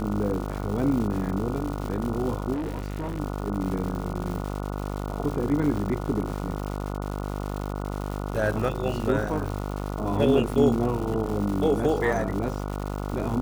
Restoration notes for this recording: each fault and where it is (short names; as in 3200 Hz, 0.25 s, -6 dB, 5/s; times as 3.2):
buzz 50 Hz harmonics 29 -31 dBFS
crackle 270/s -32 dBFS
2.53–3.2 clipped -26.5 dBFS
5.77 gap 3.3 ms